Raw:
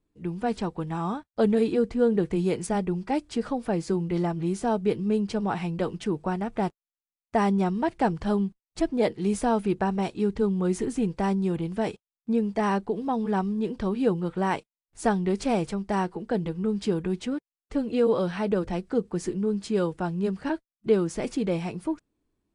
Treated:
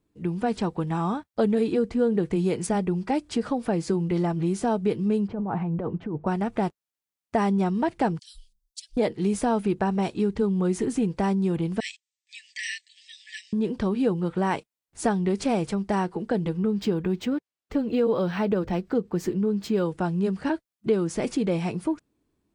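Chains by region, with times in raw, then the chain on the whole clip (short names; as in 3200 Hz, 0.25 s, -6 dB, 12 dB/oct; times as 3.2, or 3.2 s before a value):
5.28–6.27 LPF 1000 Hz + bell 370 Hz -3 dB 1.7 oct + negative-ratio compressor -32 dBFS
8.19–8.97 inverse Chebyshev band-stop 130–990 Hz, stop band 70 dB + dispersion lows, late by 0.126 s, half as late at 520 Hz
11.8–13.53 brick-wall FIR band-pass 1700–8700 Hz + high shelf 2800 Hz +8 dB
16.57–19.86 high shelf 9300 Hz -8 dB + decimation joined by straight lines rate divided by 2×
whole clip: HPF 93 Hz 6 dB/oct; low shelf 190 Hz +4 dB; compressor 2:1, threshold -27 dBFS; gain +4 dB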